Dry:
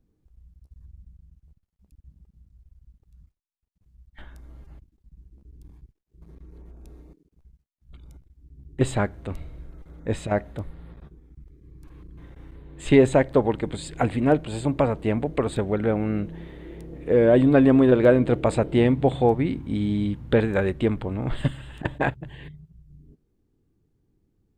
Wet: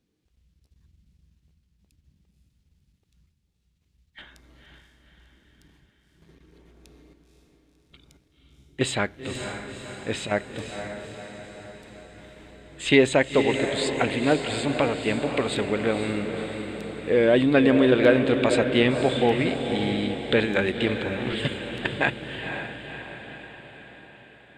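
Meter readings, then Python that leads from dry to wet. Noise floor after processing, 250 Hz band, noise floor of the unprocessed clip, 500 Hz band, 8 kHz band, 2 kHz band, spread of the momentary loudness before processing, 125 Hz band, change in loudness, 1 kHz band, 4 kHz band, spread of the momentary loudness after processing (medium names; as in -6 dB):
-69 dBFS, -2.0 dB, -72 dBFS, -0.5 dB, +5.5 dB, +6.5 dB, 20 LU, -5.5 dB, -1.5 dB, -0.5 dB, +11.0 dB, 19 LU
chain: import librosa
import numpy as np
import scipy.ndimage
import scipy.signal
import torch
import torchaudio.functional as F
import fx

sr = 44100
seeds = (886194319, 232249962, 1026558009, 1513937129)

y = fx.weighting(x, sr, curve='D')
y = fx.echo_diffused(y, sr, ms=515, feedback_pct=57, wet_db=-7)
y = y * librosa.db_to_amplitude(-1.5)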